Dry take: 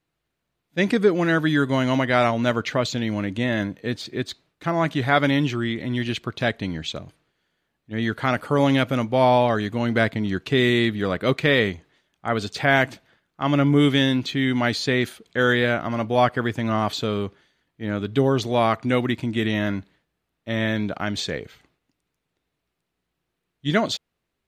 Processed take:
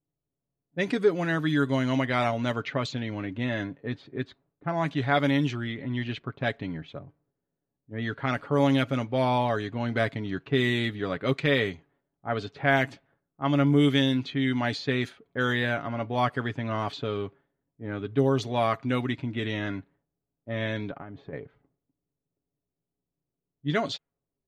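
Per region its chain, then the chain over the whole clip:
0:20.91–0:21.33: low-pass filter 2,100 Hz 6 dB per octave + downward compressor 12 to 1, threshold −28 dBFS
whole clip: low-pass that shuts in the quiet parts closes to 530 Hz, open at −16 dBFS; comb filter 7.2 ms, depth 45%; level −6.5 dB

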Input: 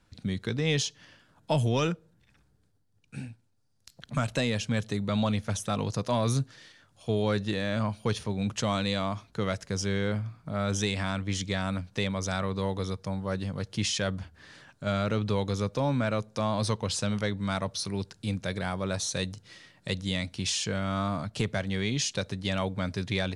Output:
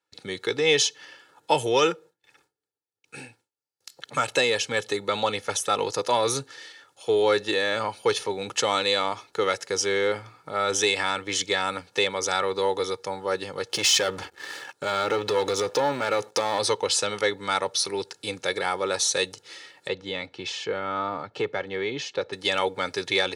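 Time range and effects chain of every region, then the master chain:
0:13.69–0:16.59: leveller curve on the samples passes 2 + downward compressor, threshold −25 dBFS
0:19.88–0:22.33: high-pass filter 42 Hz + head-to-tape spacing loss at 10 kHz 28 dB
whole clip: high-pass filter 370 Hz 12 dB per octave; noise gate with hold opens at −56 dBFS; comb filter 2.3 ms, depth 65%; level +7 dB

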